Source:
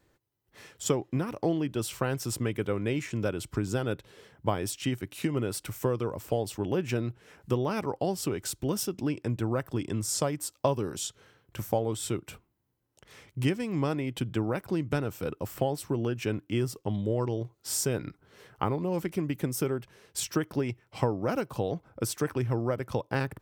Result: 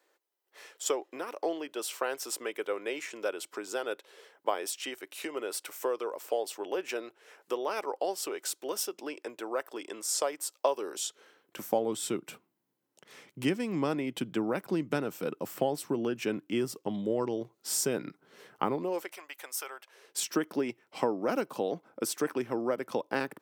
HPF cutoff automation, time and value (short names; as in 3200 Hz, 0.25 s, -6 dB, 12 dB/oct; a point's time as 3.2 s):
HPF 24 dB/oct
10.74 s 410 Hz
11.91 s 180 Hz
18.74 s 180 Hz
19.18 s 720 Hz
19.77 s 720 Hz
20.22 s 220 Hz